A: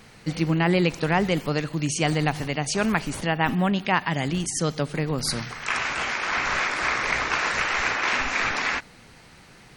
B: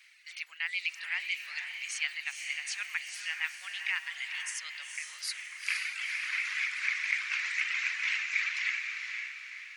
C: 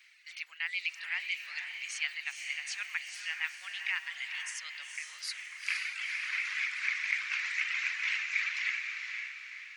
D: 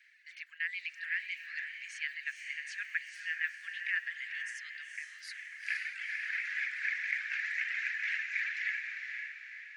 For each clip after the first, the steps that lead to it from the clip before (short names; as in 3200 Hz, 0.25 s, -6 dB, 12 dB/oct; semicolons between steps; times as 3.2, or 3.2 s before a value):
reverb removal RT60 1.5 s; ladder high-pass 1900 Hz, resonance 55%; diffused feedback echo 0.474 s, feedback 46%, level -5 dB
bell 11000 Hz -6.5 dB 0.76 oct; gain -1 dB
ladder high-pass 1600 Hz, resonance 80%; gain +1.5 dB